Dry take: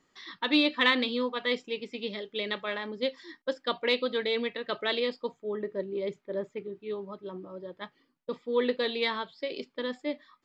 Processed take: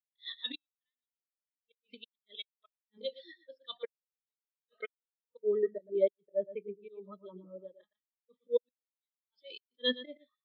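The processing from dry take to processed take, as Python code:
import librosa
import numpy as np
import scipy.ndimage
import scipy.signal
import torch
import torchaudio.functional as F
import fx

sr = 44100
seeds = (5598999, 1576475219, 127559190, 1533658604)

y = fx.dynamic_eq(x, sr, hz=390.0, q=4.1, threshold_db=-45.0, ratio=4.0, max_db=-5)
y = fx.auto_swell(y, sr, attack_ms=128.0)
y = fx.peak_eq(y, sr, hz=3700.0, db=13.5, octaves=1.9)
y = y + 10.0 ** (-6.5 / 20.0) * np.pad(y, (int(117 * sr / 1000.0), 0))[:len(y)]
y = fx.gate_flip(y, sr, shuts_db=-18.0, range_db=-41)
y = scipy.signal.sosfilt(scipy.signal.butter(2, 140.0, 'highpass', fs=sr, output='sos'), y)
y = fx.spectral_expand(y, sr, expansion=2.5)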